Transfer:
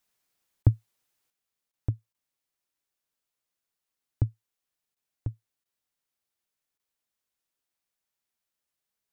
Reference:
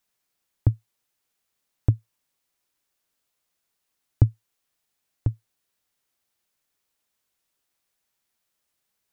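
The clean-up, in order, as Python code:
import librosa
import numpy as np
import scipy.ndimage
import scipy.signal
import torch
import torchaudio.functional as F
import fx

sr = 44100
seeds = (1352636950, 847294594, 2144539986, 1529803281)

y = fx.fix_interpolate(x, sr, at_s=(0.63, 1.72, 2.13, 4.95, 5.64, 6.78), length_ms=13.0)
y = fx.fix_level(y, sr, at_s=1.3, step_db=8.5)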